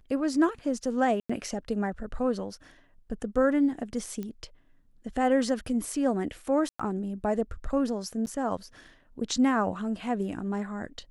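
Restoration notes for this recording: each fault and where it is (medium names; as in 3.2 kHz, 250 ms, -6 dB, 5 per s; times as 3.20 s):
1.20–1.29 s: dropout 95 ms
4.23 s: pop -24 dBFS
6.69–6.79 s: dropout 105 ms
8.26–8.27 s: dropout 9.3 ms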